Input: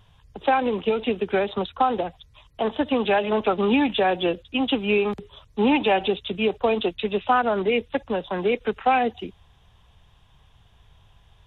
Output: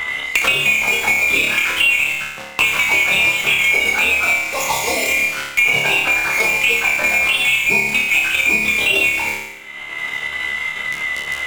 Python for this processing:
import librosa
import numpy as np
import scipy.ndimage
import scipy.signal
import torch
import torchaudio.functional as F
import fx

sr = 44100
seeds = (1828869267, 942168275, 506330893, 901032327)

p1 = fx.band_swap(x, sr, width_hz=2000)
p2 = fx.rev_schroeder(p1, sr, rt60_s=1.0, comb_ms=33, drr_db=17.5)
p3 = fx.fuzz(p2, sr, gain_db=47.0, gate_db=-43.0)
p4 = p2 + F.gain(torch.from_numpy(p3), -12.0).numpy()
p5 = fx.low_shelf(p4, sr, hz=430.0, db=5.0)
p6 = fx.doubler(p5, sr, ms=15.0, db=-3.0)
p7 = fx.level_steps(p6, sr, step_db=9)
p8 = fx.spec_repair(p7, sr, seeds[0], start_s=4.45, length_s=0.65, low_hz=1200.0, high_hz=3300.0, source='both')
p9 = p8 + fx.room_flutter(p8, sr, wall_m=4.8, rt60_s=0.58, dry=0)
p10 = fx.band_squash(p9, sr, depth_pct=100)
y = F.gain(torch.from_numpy(p10), 1.0).numpy()